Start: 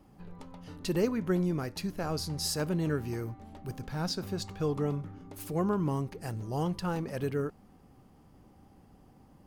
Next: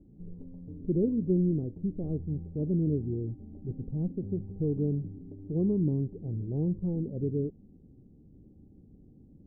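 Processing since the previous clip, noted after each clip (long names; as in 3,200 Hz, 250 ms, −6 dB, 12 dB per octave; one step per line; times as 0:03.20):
inverse Chebyshev low-pass filter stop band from 1,800 Hz, stop band 70 dB
level +3.5 dB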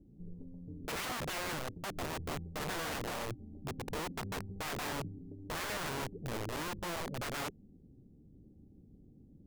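wrap-around overflow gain 30 dB
level −3.5 dB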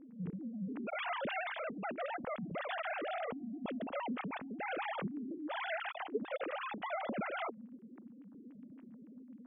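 three sine waves on the formant tracks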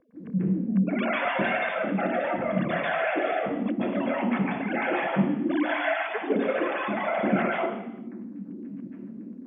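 convolution reverb RT60 0.80 s, pre-delay 137 ms, DRR −7.5 dB
level −4.5 dB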